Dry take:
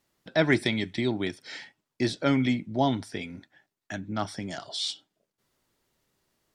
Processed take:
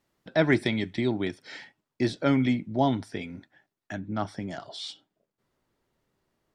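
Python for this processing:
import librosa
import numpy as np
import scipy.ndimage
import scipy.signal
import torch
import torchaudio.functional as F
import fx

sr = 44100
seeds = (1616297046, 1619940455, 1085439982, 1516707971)

y = fx.high_shelf(x, sr, hz=2800.0, db=fx.steps((0.0, -7.0), (3.92, -12.0)))
y = F.gain(torch.from_numpy(y), 1.0).numpy()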